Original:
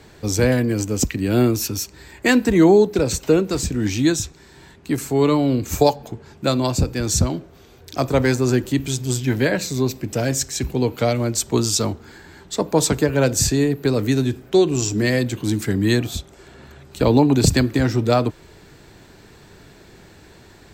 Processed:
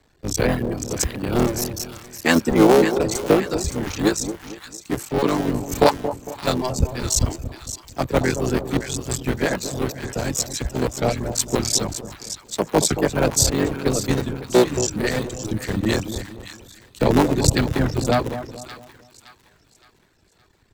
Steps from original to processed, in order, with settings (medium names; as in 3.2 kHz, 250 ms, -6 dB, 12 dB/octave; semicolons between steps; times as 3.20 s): cycle switcher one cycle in 3, muted; reverb removal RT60 1.3 s; on a send: two-band feedback delay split 1 kHz, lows 227 ms, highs 567 ms, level -8 dB; on the sum: three bands expanded up and down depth 40%